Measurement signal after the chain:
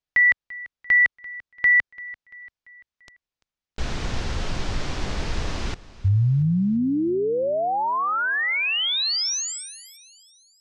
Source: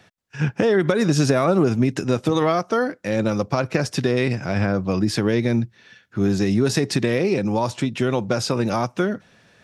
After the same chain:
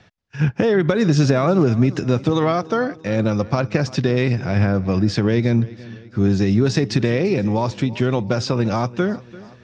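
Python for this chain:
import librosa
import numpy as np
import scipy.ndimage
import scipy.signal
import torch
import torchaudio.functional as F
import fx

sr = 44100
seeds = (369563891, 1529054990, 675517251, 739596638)

y = scipy.signal.sosfilt(scipy.signal.butter(4, 6200.0, 'lowpass', fs=sr, output='sos'), x)
y = fx.low_shelf(y, sr, hz=110.0, db=11.0)
y = fx.echo_feedback(y, sr, ms=341, feedback_pct=49, wet_db=-19.5)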